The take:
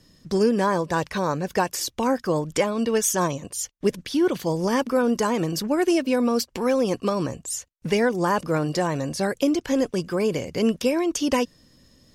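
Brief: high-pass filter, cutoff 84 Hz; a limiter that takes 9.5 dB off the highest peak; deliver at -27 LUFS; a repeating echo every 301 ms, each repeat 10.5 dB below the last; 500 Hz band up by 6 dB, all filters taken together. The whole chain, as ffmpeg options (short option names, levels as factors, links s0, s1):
-af "highpass=84,equalizer=f=500:t=o:g=7,alimiter=limit=0.2:level=0:latency=1,aecho=1:1:301|602|903:0.299|0.0896|0.0269,volume=0.631"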